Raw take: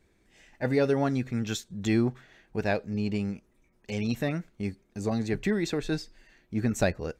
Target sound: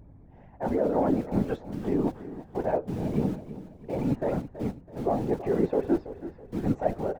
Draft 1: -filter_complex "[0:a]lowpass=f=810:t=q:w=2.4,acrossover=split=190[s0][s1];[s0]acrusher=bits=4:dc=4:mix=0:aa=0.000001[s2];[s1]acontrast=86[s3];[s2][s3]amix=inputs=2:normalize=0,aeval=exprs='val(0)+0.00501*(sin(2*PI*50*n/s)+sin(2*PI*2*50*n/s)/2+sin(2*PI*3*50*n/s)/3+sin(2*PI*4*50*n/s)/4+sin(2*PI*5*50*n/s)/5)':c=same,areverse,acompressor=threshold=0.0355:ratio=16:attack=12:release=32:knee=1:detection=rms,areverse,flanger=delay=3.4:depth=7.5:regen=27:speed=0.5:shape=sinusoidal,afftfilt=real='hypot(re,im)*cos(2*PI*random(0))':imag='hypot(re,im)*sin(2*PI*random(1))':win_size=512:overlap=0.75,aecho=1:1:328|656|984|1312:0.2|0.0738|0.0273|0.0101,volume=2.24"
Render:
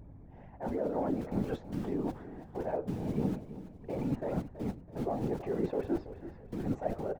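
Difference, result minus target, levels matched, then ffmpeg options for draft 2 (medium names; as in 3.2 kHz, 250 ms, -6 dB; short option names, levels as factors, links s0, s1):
compression: peak gain reduction +8 dB
-filter_complex "[0:a]lowpass=f=810:t=q:w=2.4,acrossover=split=190[s0][s1];[s0]acrusher=bits=4:dc=4:mix=0:aa=0.000001[s2];[s1]acontrast=86[s3];[s2][s3]amix=inputs=2:normalize=0,aeval=exprs='val(0)+0.00501*(sin(2*PI*50*n/s)+sin(2*PI*2*50*n/s)/2+sin(2*PI*3*50*n/s)/3+sin(2*PI*4*50*n/s)/4+sin(2*PI*5*50*n/s)/5)':c=same,areverse,acompressor=threshold=0.0944:ratio=16:attack=12:release=32:knee=1:detection=rms,areverse,flanger=delay=3.4:depth=7.5:regen=27:speed=0.5:shape=sinusoidal,afftfilt=real='hypot(re,im)*cos(2*PI*random(0))':imag='hypot(re,im)*sin(2*PI*random(1))':win_size=512:overlap=0.75,aecho=1:1:328|656|984|1312:0.2|0.0738|0.0273|0.0101,volume=2.24"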